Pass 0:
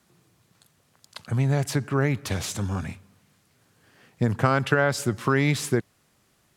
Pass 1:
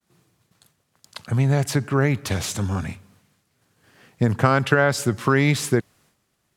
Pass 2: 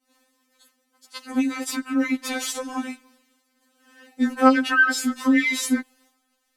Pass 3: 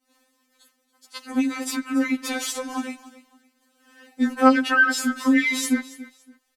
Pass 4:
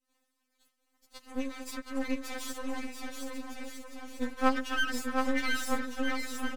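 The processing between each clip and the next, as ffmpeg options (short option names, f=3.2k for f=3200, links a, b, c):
-af "agate=range=-33dB:threshold=-57dB:ratio=3:detection=peak,volume=3.5dB"
-af "afftfilt=real='re*3.46*eq(mod(b,12),0)':imag='im*3.46*eq(mod(b,12),0)':win_size=2048:overlap=0.75,volume=3dB"
-af "aecho=1:1:282|564:0.133|0.0347"
-af "aeval=exprs='max(val(0),0)':c=same,aecho=1:1:720|1260|1665|1969|2197:0.631|0.398|0.251|0.158|0.1,volume=-8.5dB"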